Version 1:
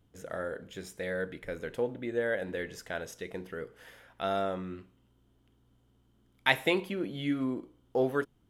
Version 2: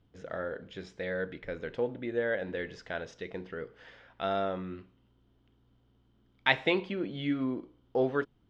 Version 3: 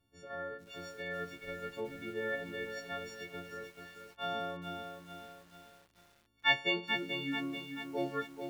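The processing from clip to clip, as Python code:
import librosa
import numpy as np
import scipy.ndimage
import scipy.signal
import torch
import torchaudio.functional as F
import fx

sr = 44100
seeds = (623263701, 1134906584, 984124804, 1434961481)

y1 = scipy.signal.sosfilt(scipy.signal.butter(4, 5000.0, 'lowpass', fs=sr, output='sos'), x)
y2 = fx.freq_snap(y1, sr, grid_st=4)
y2 = fx.echo_crushed(y2, sr, ms=436, feedback_pct=55, bits=8, wet_db=-6.5)
y2 = y2 * 10.0 ** (-8.0 / 20.0)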